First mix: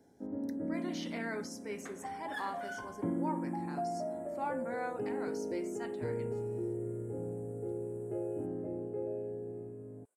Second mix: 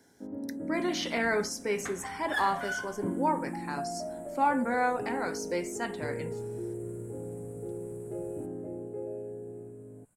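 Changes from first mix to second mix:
speech +11.5 dB; second sound: remove ladder high-pass 380 Hz, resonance 60%

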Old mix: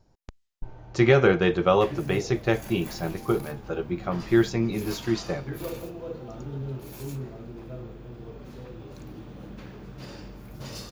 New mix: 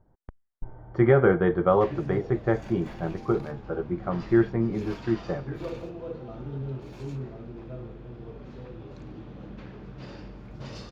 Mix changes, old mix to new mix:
speech: add Savitzky-Golay filter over 41 samples; master: add distance through air 150 m

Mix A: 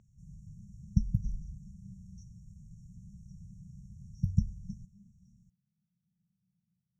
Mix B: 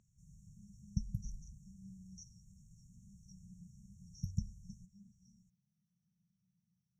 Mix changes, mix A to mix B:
background -9.0 dB; master: add tone controls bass -1 dB, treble +12 dB

